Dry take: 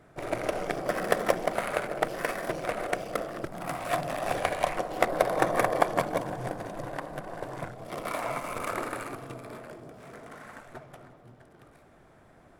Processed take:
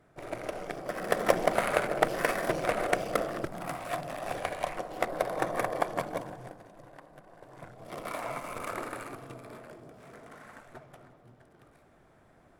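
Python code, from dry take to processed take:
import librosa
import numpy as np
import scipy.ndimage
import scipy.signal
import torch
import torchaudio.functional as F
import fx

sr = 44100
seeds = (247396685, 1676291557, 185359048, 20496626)

y = fx.gain(x, sr, db=fx.line((0.93, -6.5), (1.38, 2.5), (3.31, 2.5), (3.94, -5.5), (6.2, -5.5), (6.66, -15.0), (7.43, -15.0), (7.89, -4.0)))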